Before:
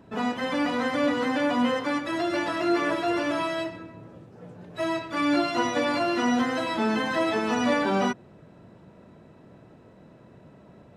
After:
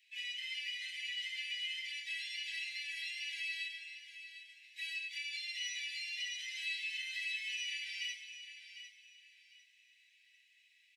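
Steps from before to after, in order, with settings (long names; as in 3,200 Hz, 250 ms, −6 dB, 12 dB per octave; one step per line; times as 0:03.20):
Butterworth high-pass 2,000 Hz 96 dB per octave
high-shelf EQ 3,000 Hz −10 dB
comb filter 2.4 ms, depth 33%
downward compressor 2.5 to 1, threshold −50 dBFS, peak gain reduction 9 dB
repeating echo 752 ms, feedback 27%, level −11.5 dB
coupled-rooms reverb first 0.3 s, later 2 s, from −17 dB, DRR −4 dB
level +2.5 dB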